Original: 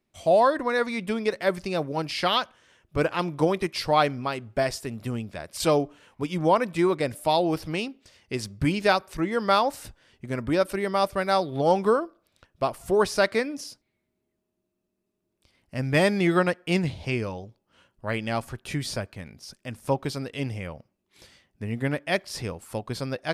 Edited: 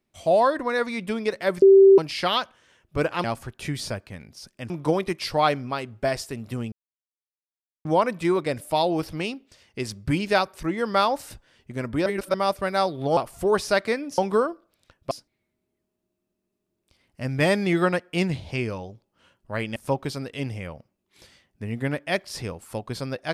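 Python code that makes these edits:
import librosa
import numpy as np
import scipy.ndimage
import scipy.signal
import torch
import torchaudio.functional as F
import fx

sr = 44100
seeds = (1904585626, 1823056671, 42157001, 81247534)

y = fx.edit(x, sr, fx.bleep(start_s=1.62, length_s=0.36, hz=389.0, db=-8.5),
    fx.silence(start_s=5.26, length_s=1.13),
    fx.reverse_span(start_s=10.6, length_s=0.28),
    fx.move(start_s=11.71, length_s=0.93, to_s=13.65),
    fx.move(start_s=18.3, length_s=1.46, to_s=3.24), tone=tone)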